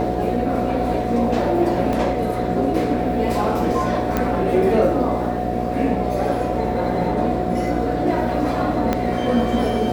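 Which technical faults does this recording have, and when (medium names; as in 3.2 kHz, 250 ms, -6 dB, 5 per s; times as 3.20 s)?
buzz 60 Hz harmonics 12 -25 dBFS
whine 730 Hz -26 dBFS
1.93 s: dropout 2.5 ms
4.17 s: pop -7 dBFS
8.93 s: pop -7 dBFS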